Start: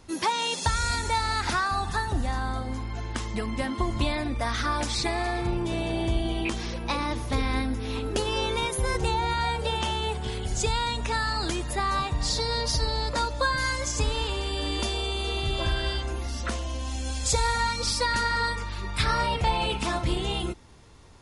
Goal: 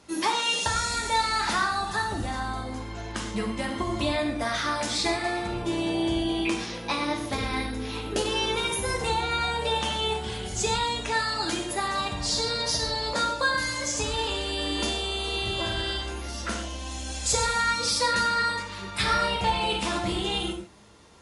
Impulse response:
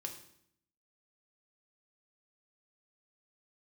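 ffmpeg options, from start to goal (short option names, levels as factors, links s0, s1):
-filter_complex "[0:a]highpass=f=200:p=1[s0];[1:a]atrim=start_sample=2205,atrim=end_sample=3969,asetrate=25578,aresample=44100[s1];[s0][s1]afir=irnorm=-1:irlink=0,volume=1.12"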